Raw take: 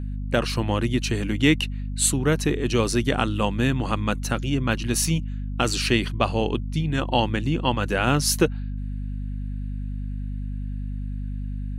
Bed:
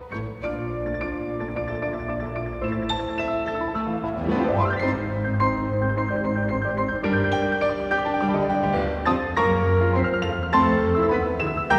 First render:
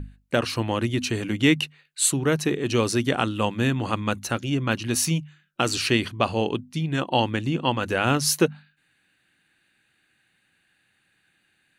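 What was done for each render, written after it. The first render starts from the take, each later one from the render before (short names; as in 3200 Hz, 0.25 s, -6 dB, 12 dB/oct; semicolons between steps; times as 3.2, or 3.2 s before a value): notches 50/100/150/200/250 Hz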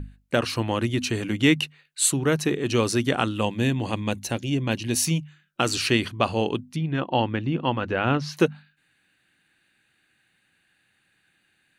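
3.41–5.07 bell 1300 Hz -12.5 dB 0.44 oct; 6.76–8.37 air absorption 250 m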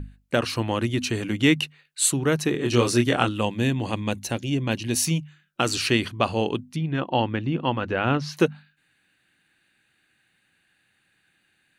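2.52–3.29 doubler 25 ms -3.5 dB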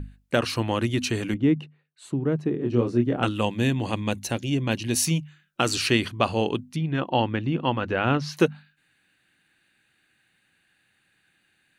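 1.34–3.23 band-pass 210 Hz, Q 0.6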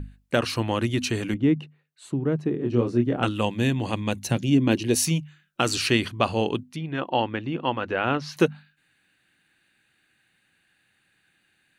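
4.25–4.94 bell 130 Hz -> 480 Hz +11.5 dB; 6.63–8.36 tone controls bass -7 dB, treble -3 dB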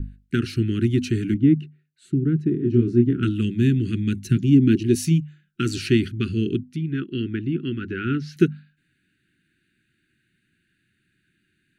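Chebyshev band-stop 390–1400 Hz, order 4; tilt shelf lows +6.5 dB, about 900 Hz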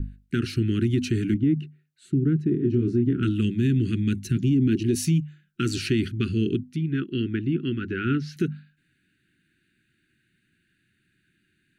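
limiter -14 dBFS, peak gain reduction 10 dB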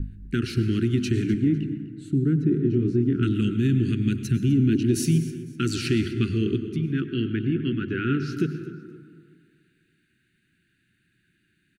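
feedback echo 0.251 s, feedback 27%, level -18 dB; plate-style reverb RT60 2 s, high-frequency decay 0.35×, pre-delay 85 ms, DRR 9 dB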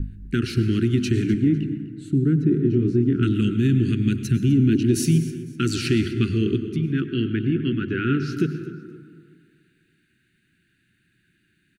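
gain +2.5 dB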